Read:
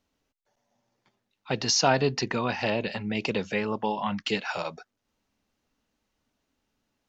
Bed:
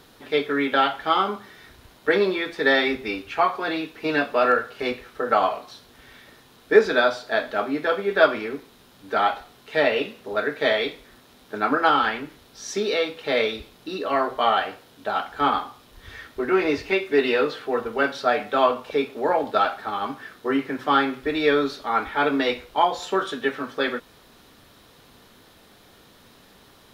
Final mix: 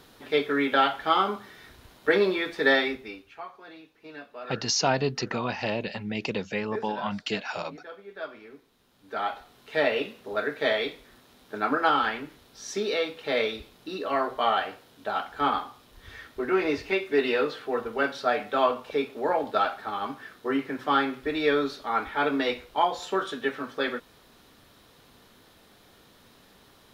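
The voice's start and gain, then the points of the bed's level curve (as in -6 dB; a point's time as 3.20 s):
3.00 s, -2.0 dB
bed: 2.73 s -2 dB
3.44 s -20.5 dB
8.21 s -20.5 dB
9.65 s -4 dB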